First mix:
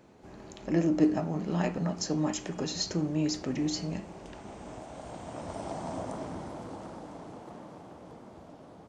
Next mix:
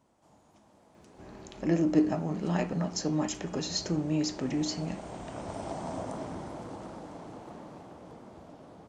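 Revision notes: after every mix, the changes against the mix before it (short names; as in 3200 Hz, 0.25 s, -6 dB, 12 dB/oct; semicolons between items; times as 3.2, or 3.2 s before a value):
speech: entry +0.95 s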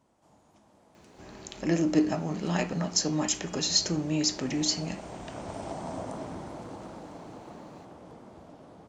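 speech: add high shelf 2000 Hz +10 dB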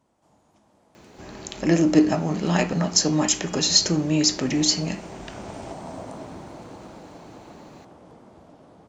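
speech +7.0 dB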